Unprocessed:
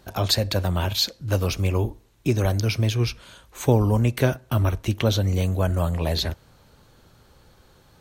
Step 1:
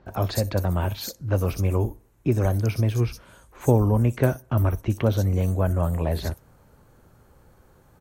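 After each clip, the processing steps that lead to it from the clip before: peaking EQ 3.7 kHz -11.5 dB 1.4 oct; bands offset in time lows, highs 60 ms, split 4.6 kHz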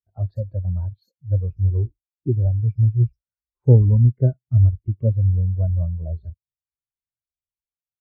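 spectral contrast expander 2.5:1; trim +3 dB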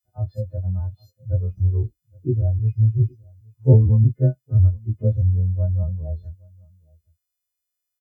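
partials quantised in pitch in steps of 3 st; echo from a far wall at 140 m, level -27 dB

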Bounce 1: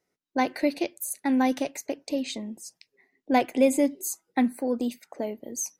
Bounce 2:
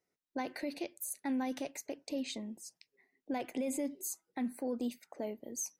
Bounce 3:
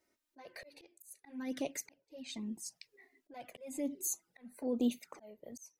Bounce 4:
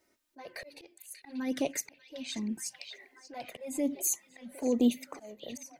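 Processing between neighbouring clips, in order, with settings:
peak limiter -21 dBFS, peak gain reduction 11.5 dB; trim -7 dB
slow attack 799 ms; touch-sensitive flanger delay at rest 3.3 ms, full sweep at -42 dBFS; trim +10 dB
repeats whose band climbs or falls 587 ms, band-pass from 3.4 kHz, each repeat -0.7 oct, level -5.5 dB; trim +6.5 dB

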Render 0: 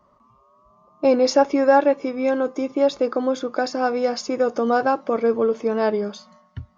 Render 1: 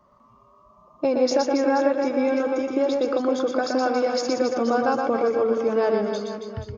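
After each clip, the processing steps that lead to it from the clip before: compression 3:1, threshold -20 dBFS, peak gain reduction 8 dB; on a send: reverse bouncing-ball echo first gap 120 ms, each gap 1.3×, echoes 5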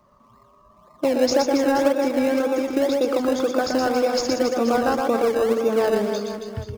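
treble shelf 5.4 kHz +6.5 dB; in parallel at -10.5 dB: decimation with a swept rate 27×, swing 100% 1.9 Hz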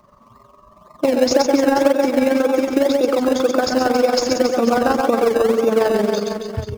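in parallel at -1.5 dB: peak limiter -17 dBFS, peak gain reduction 10 dB; on the sum: AM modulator 22 Hz, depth 40%; trim +3 dB

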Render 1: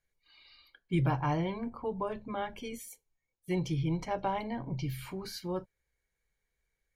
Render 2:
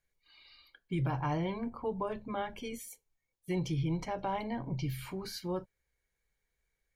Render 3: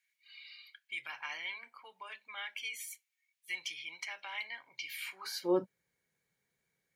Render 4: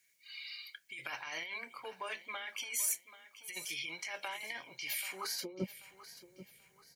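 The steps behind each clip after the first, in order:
peak limiter -25 dBFS, peak gain reduction 6 dB
high-pass sweep 2.2 kHz -> 160 Hz, 5.10–5.71 s; trim +2 dB
compressor with a negative ratio -45 dBFS, ratio -1; high-order bell 1.8 kHz -8 dB 2.7 oct; feedback delay 785 ms, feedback 35%, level -15 dB; trim +9 dB

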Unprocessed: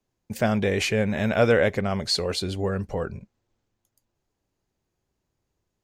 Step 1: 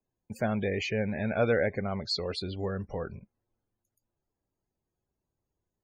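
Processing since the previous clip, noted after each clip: loudest bins only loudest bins 64; trim -6.5 dB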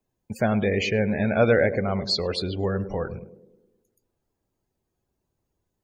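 band-passed feedback delay 104 ms, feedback 63%, band-pass 320 Hz, level -10 dB; trim +6.5 dB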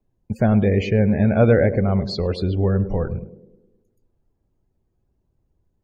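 tilt EQ -3 dB/octave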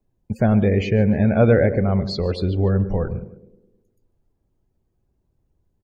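feedback delay 145 ms, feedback 30%, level -20 dB

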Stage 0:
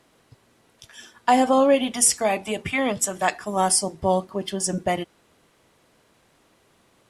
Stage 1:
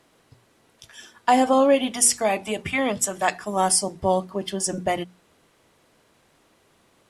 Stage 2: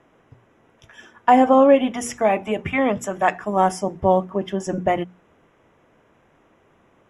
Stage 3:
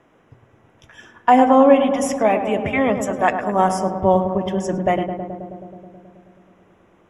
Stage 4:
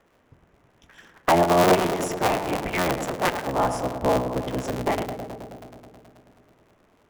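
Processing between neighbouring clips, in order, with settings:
hum notches 60/120/180/240 Hz
boxcar filter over 10 samples; trim +4.5 dB
filtered feedback delay 107 ms, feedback 81%, low-pass 1.6 kHz, level -8 dB; trim +1 dB
cycle switcher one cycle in 3, inverted; trim -6 dB

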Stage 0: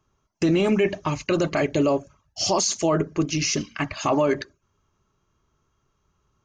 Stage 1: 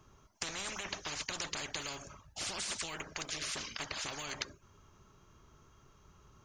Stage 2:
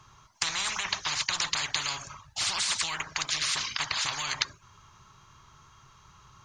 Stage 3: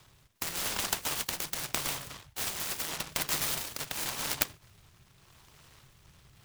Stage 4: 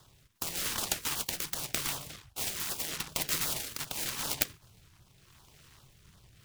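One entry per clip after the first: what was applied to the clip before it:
spectrum-flattening compressor 10:1; trim -7.5 dB
graphic EQ 125/250/500/1000/2000/4000/8000 Hz +8/-4/-5/+11/+6/+10/+7 dB
rotary cabinet horn 0.85 Hz; delay time shaken by noise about 2 kHz, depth 0.21 ms
LFO notch saw down 2.6 Hz 460–2500 Hz; warped record 45 rpm, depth 160 cents

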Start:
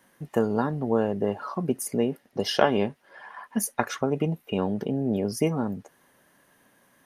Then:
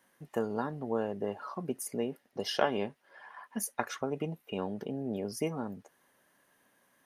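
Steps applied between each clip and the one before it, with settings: bass shelf 250 Hz -6.5 dB; trim -6.5 dB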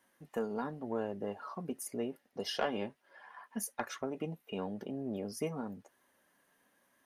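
flange 1 Hz, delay 2.9 ms, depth 1.7 ms, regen -58%; saturation -22 dBFS, distortion -21 dB; trim +1 dB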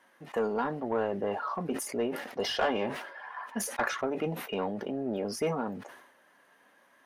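overdrive pedal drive 15 dB, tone 1.9 kHz, clips at -21.5 dBFS; decay stretcher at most 63 dB/s; trim +3.5 dB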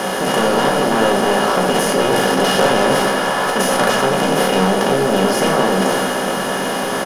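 spectral levelling over time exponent 0.2; doubling 15 ms -11 dB; reverberation RT60 0.95 s, pre-delay 5 ms, DRR 1.5 dB; trim +4.5 dB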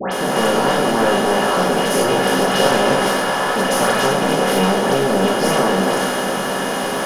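phase dispersion highs, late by 119 ms, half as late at 1.8 kHz; trim -1 dB

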